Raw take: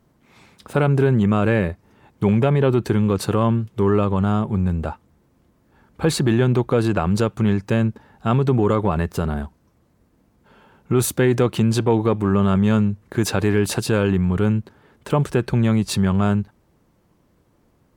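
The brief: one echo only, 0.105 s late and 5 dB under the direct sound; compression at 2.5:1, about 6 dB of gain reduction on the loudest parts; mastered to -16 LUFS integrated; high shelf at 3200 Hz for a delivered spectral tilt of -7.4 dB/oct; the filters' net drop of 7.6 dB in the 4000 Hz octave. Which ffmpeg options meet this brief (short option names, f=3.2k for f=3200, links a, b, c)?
-af "highshelf=f=3.2k:g=-7.5,equalizer=f=4k:t=o:g=-4,acompressor=threshold=-22dB:ratio=2.5,aecho=1:1:105:0.562,volume=8.5dB"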